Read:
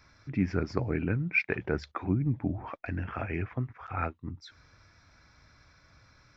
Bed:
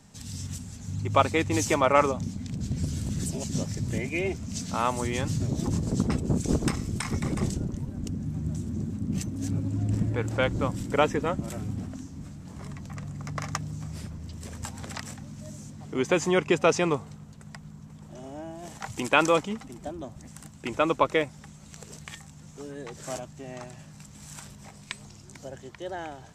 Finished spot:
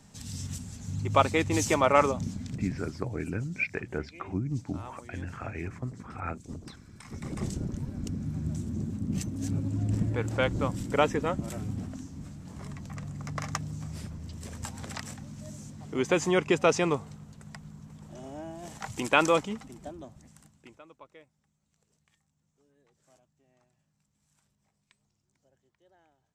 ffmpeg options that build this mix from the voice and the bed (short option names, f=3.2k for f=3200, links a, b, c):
-filter_complex "[0:a]adelay=2250,volume=-3.5dB[a];[1:a]volume=17.5dB,afade=t=out:st=2.33:d=0.7:silence=0.112202,afade=t=in:st=6.98:d=0.76:silence=0.11885,afade=t=out:st=19.35:d=1.47:silence=0.0421697[b];[a][b]amix=inputs=2:normalize=0"